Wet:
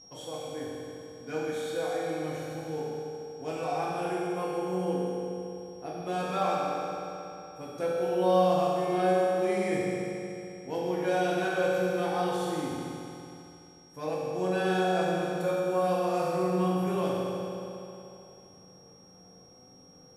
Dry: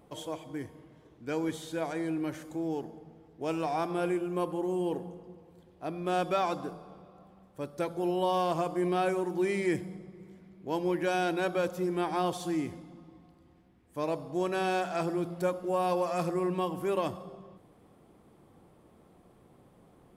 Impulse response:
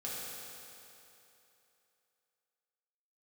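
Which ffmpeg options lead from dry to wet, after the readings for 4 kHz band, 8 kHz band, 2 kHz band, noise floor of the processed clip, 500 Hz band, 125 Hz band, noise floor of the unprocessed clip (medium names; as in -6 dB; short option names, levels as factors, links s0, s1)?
+2.5 dB, +2.0 dB, +2.5 dB, -54 dBFS, +3.5 dB, +3.0 dB, -61 dBFS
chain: -filter_complex "[0:a]aeval=exprs='val(0)+0.00501*sin(2*PI*5600*n/s)':c=same[s0];[1:a]atrim=start_sample=2205[s1];[s0][s1]afir=irnorm=-1:irlink=0" -ar 32000 -c:a libmp3lame -b:a 80k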